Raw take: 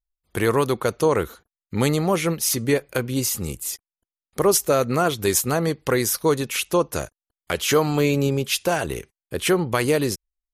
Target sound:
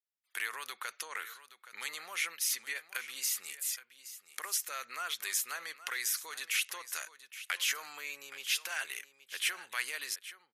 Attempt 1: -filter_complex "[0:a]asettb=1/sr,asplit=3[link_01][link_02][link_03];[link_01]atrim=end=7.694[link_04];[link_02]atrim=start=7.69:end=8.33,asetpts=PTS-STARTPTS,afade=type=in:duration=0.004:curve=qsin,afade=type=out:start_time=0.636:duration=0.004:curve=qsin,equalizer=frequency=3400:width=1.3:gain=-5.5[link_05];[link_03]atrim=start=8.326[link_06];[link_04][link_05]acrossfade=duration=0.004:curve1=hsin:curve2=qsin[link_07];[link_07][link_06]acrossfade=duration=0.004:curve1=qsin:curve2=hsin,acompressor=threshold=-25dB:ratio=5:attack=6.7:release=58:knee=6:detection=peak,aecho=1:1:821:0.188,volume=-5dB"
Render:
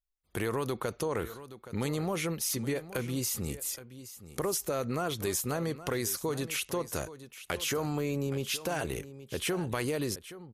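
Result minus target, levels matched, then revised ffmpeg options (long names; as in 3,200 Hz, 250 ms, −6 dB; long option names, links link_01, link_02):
2,000 Hz band −6.0 dB
-filter_complex "[0:a]asettb=1/sr,asplit=3[link_01][link_02][link_03];[link_01]atrim=end=7.694[link_04];[link_02]atrim=start=7.69:end=8.33,asetpts=PTS-STARTPTS,afade=type=in:duration=0.004:curve=qsin,afade=type=out:start_time=0.636:duration=0.004:curve=qsin,equalizer=frequency=3400:width=1.3:gain=-5.5[link_05];[link_03]atrim=start=8.326[link_06];[link_04][link_05]acrossfade=duration=0.004:curve1=hsin:curve2=qsin[link_07];[link_07][link_06]acrossfade=duration=0.004:curve1=qsin:curve2=hsin,acompressor=threshold=-25dB:ratio=5:attack=6.7:release=58:knee=6:detection=peak,highpass=frequency=1800:width_type=q:width=1.7,aecho=1:1:821:0.188,volume=-5dB"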